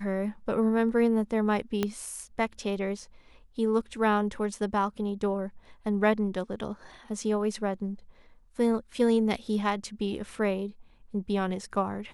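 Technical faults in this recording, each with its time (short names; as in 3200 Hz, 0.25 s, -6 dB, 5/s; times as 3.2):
1.83 pop -13 dBFS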